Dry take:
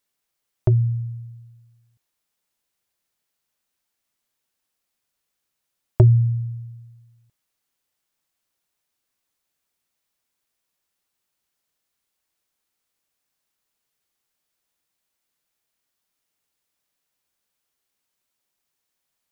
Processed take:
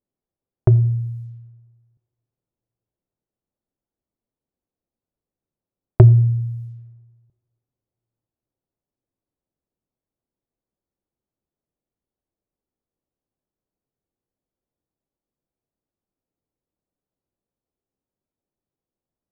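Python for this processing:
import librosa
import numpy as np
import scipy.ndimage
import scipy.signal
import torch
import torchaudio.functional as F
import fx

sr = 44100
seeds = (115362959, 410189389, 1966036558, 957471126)

y = fx.rev_double_slope(x, sr, seeds[0], early_s=0.71, late_s=2.6, knee_db=-26, drr_db=16.0)
y = fx.env_lowpass(y, sr, base_hz=450.0, full_db=-28.0)
y = F.gain(torch.from_numpy(y), 4.0).numpy()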